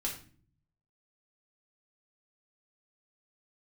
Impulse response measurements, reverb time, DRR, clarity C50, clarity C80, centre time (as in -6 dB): no single decay rate, -2.5 dB, 7.0 dB, 12.0 dB, 23 ms